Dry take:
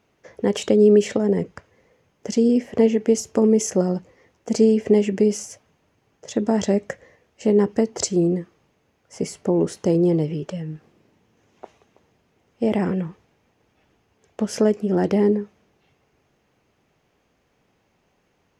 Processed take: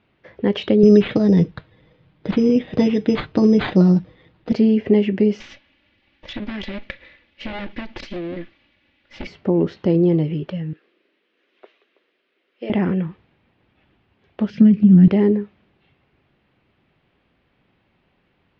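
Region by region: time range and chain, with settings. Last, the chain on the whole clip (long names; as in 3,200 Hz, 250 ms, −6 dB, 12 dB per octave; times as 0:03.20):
0:00.83–0:04.52: low-shelf EQ 190 Hz +9.5 dB + comb filter 6.4 ms, depth 50% + bad sample-rate conversion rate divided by 8×, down none, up hold
0:05.40–0:09.27: lower of the sound and its delayed copy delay 3.5 ms + high shelf with overshoot 1,600 Hz +7 dB, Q 1.5 + downward compressor, threshold −27 dBFS
0:10.73–0:12.70: high-pass filter 370 Hz 24 dB per octave + parametric band 840 Hz −13.5 dB 0.72 octaves
0:14.50–0:15.08: drawn EQ curve 120 Hz 0 dB, 180 Hz +12 dB, 360 Hz −11 dB, 800 Hz −22 dB, 2,400 Hz −5 dB, 9,500 Hz −10 dB + transient designer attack +3 dB, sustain +8 dB
whole clip: Butterworth low-pass 4,000 Hz 36 dB per octave; parametric band 700 Hz −5 dB 1.7 octaves; notch filter 450 Hz, Q 12; level +4 dB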